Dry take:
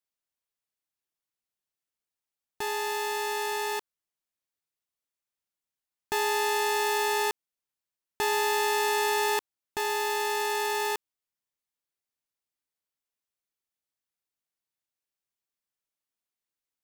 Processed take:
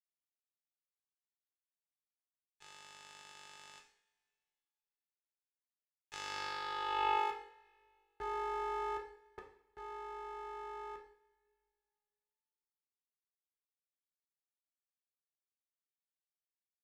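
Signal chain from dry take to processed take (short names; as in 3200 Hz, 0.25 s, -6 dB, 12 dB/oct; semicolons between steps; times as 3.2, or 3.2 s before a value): band-pass sweep 2500 Hz -> 480 Hz, 6.04–7.72; 8.97–9.38 differentiator; power-law curve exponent 3; two-slope reverb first 0.54 s, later 2.4 s, from -25 dB, DRR 0.5 dB; gain +2 dB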